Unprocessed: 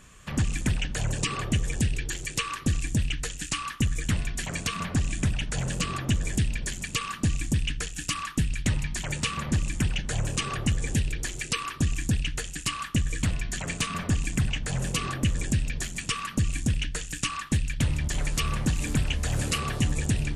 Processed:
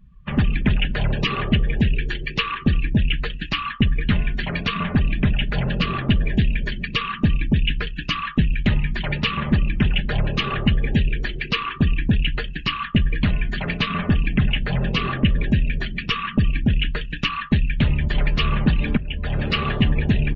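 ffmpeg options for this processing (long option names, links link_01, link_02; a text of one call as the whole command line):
ffmpeg -i in.wav -filter_complex "[0:a]asplit=2[link_01][link_02];[link_01]atrim=end=18.97,asetpts=PTS-STARTPTS,afade=type=out:start_time=18.966:duration=0.004:curve=hsin:silence=0.177828[link_03];[link_02]atrim=start=18.97,asetpts=PTS-STARTPTS,afade=type=in:duration=0.77:curve=qsin:silence=0.177828[link_04];[link_03][link_04]concat=n=2:v=0:a=1,lowpass=frequency=4000:width=0.5412,lowpass=frequency=4000:width=1.3066,afftdn=noise_reduction=29:noise_floor=-44,aecho=1:1:4.9:0.35,volume=7.5dB" out.wav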